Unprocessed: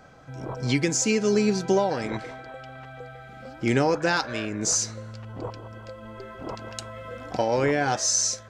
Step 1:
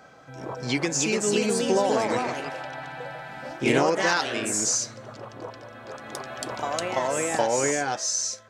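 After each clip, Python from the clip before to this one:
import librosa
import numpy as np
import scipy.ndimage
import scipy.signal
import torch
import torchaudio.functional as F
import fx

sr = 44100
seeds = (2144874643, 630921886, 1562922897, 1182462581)

y = fx.highpass(x, sr, hz=280.0, slope=6)
y = fx.rider(y, sr, range_db=4, speed_s=0.5)
y = fx.echo_pitch(y, sr, ms=382, semitones=2, count=2, db_per_echo=-3.0)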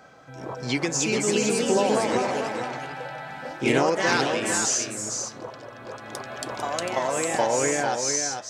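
y = x + 10.0 ** (-6.0 / 20.0) * np.pad(x, (int(449 * sr / 1000.0), 0))[:len(x)]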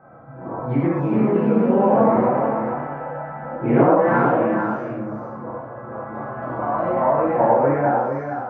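y = scipy.signal.sosfilt(scipy.signal.butter(4, 1300.0, 'lowpass', fs=sr, output='sos'), x)
y = fx.notch(y, sr, hz=430.0, q=13.0)
y = fx.rev_gated(y, sr, seeds[0], gate_ms=160, shape='flat', drr_db=-7.5)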